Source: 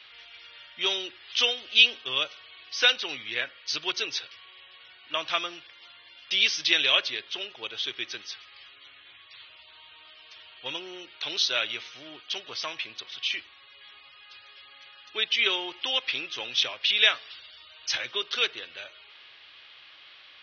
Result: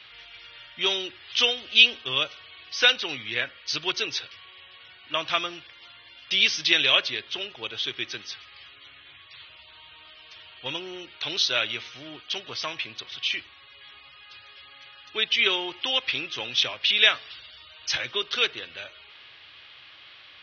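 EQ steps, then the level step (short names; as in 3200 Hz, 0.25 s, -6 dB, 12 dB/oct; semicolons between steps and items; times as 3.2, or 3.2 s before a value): tone controls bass +8 dB, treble -2 dB; +2.5 dB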